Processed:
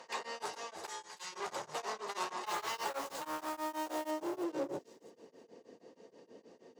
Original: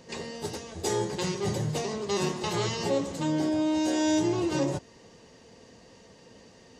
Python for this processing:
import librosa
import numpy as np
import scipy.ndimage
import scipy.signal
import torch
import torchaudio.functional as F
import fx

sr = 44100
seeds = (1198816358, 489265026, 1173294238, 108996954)

p1 = fx.rider(x, sr, range_db=5, speed_s=2.0)
p2 = x + (p1 * 10.0 ** (-1.0 / 20.0))
p3 = fx.tone_stack(p2, sr, knobs='5-5-5', at=(0.88, 1.32), fade=0.02)
p4 = 10.0 ** (-26.5 / 20.0) * np.tanh(p3 / 10.0 ** (-26.5 / 20.0))
p5 = fx.riaa(p4, sr, side='recording')
p6 = (np.mod(10.0 ** (11.0 / 20.0) * p5 + 1.0, 2.0) - 1.0) / 10.0 ** (11.0 / 20.0)
p7 = fx.filter_sweep_bandpass(p6, sr, from_hz=1000.0, to_hz=350.0, start_s=3.48, end_s=4.86, q=1.5)
p8 = fx.quant_dither(p7, sr, seeds[0], bits=8, dither='none', at=(2.46, 4.11))
p9 = fx.echo_wet_highpass(p8, sr, ms=331, feedback_pct=31, hz=4700.0, wet_db=-8)
p10 = p9 * np.abs(np.cos(np.pi * 6.3 * np.arange(len(p9)) / sr))
y = p10 * 10.0 ** (2.0 / 20.0)